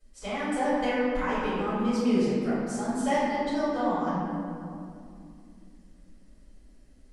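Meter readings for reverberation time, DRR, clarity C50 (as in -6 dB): 2.5 s, -14.0 dB, -4.0 dB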